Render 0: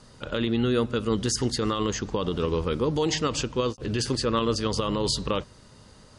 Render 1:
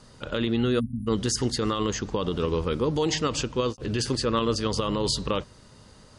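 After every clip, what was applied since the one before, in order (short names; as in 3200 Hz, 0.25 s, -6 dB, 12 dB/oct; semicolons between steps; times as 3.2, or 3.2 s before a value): spectral delete 0.8–1.07, 280–9400 Hz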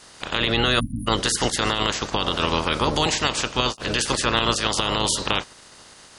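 spectral limiter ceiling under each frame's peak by 23 dB; added harmonics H 5 -39 dB, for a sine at -9 dBFS; gain +3.5 dB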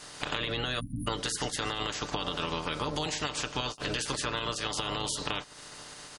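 comb 6.8 ms, depth 46%; compressor 6:1, threshold -30 dBFS, peak gain reduction 14.5 dB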